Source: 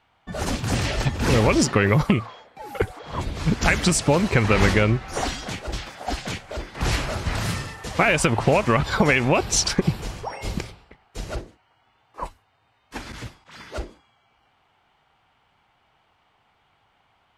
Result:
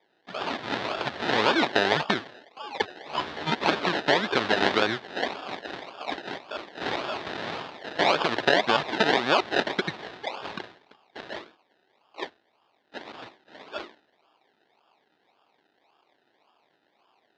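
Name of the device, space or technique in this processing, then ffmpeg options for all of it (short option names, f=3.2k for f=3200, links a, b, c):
circuit-bent sampling toy: -filter_complex "[0:a]acrusher=samples=31:mix=1:aa=0.000001:lfo=1:lforange=18.6:lforate=1.8,highpass=410,equalizer=f=510:t=q:w=4:g=-4,equalizer=f=1.7k:t=q:w=4:g=4,equalizer=f=3.7k:t=q:w=4:g=6,lowpass=f=4.6k:w=0.5412,lowpass=f=4.6k:w=1.3066,asettb=1/sr,asplit=3[a][b][c];[a]atrim=end=3.104[d];[b]atrim=start=3.1:end=3.55,asetpts=PTS-STARTPTS,afade=t=in:d=0.004:c=qsin,afade=t=out:st=0.446:d=0.004:c=qsin,asplit=2[e][f];[f]adelay=13,volume=-2dB[g];[e][g]amix=inputs=2:normalize=0,atrim=end_sample=19845[h];[c]atrim=start=3.546[i];[d][h]acrossfade=d=0.004:c1=hsin:c2=qsin[j];[j][i]acrossfade=d=0.004:c1=qsin:c2=hsin"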